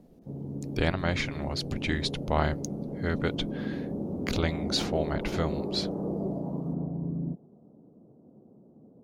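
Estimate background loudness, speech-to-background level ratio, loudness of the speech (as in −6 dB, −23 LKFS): −34.5 LKFS, 3.0 dB, −31.5 LKFS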